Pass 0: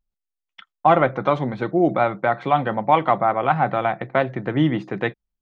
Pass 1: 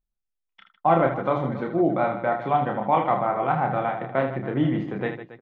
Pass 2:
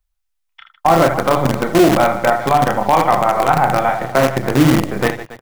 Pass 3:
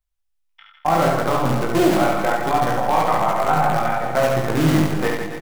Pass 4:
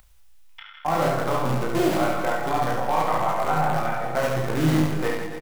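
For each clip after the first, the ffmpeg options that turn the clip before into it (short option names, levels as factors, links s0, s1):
-filter_complex "[0:a]highshelf=f=2100:g=-8.5,asplit=2[s0][s1];[s1]aecho=0:1:30|78|154.8|277.7|474.3:0.631|0.398|0.251|0.158|0.1[s2];[s0][s2]amix=inputs=2:normalize=0,volume=0.596"
-filter_complex "[0:a]acrossover=split=110|580[s0][s1][s2];[s1]acrusher=bits=5:dc=4:mix=0:aa=0.000001[s3];[s0][s3][s2]amix=inputs=3:normalize=0,alimiter=level_in=3.98:limit=0.891:release=50:level=0:latency=1,volume=0.891"
-filter_complex "[0:a]flanger=delay=16.5:depth=3.2:speed=0.71,asplit=2[s0][s1];[s1]aecho=0:1:70|161|279.3|433.1|633:0.631|0.398|0.251|0.158|0.1[s2];[s0][s2]amix=inputs=2:normalize=0,volume=0.668"
-filter_complex "[0:a]acompressor=mode=upward:threshold=0.0447:ratio=2.5,asplit=2[s0][s1];[s1]adelay=32,volume=0.473[s2];[s0][s2]amix=inputs=2:normalize=0,volume=0.531"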